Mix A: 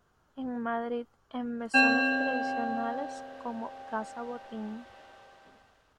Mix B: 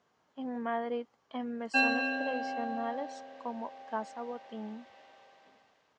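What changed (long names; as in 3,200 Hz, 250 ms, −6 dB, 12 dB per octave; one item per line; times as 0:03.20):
background −3.5 dB
master: add loudspeaker in its box 220–6,800 Hz, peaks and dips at 360 Hz −4 dB, 1,400 Hz −8 dB, 2,100 Hz +4 dB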